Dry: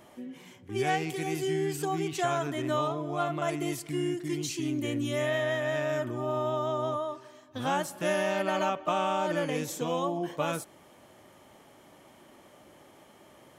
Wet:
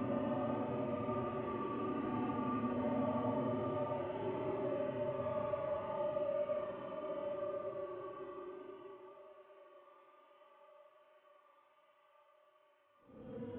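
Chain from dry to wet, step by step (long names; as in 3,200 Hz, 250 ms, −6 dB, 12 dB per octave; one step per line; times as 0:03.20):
variable-slope delta modulation 16 kbit/s
source passing by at 0:03.56, 14 m/s, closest 2.9 metres
high-pass filter 69 Hz
tilt shelving filter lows +9 dB, about 1,100 Hz
noise gate −60 dBFS, range −28 dB
flanger 0.16 Hz, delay 3.1 ms, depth 7.3 ms, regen +15%
on a send: feedback echo with a high-pass in the loop 112 ms, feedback 78%, high-pass 740 Hz, level −14.5 dB
on the sum: reverb whose tail is shaped and stops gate 110 ms rising, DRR −3.5 dB
extreme stretch with random phases 14×, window 0.05 s, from 0:06.62
level +13 dB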